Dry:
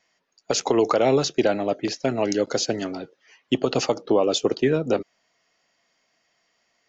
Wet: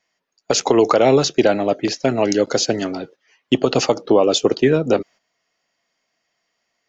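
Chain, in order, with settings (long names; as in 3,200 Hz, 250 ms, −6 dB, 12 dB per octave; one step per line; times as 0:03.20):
noise gate −46 dBFS, range −9 dB
level +5.5 dB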